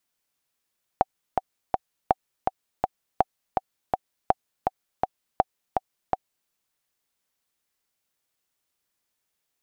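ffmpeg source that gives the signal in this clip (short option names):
-f lavfi -i "aevalsrc='pow(10,(-4.5-4*gte(mod(t,3*60/164),60/164))/20)*sin(2*PI*758*mod(t,60/164))*exp(-6.91*mod(t,60/164)/0.03)':d=5.48:s=44100"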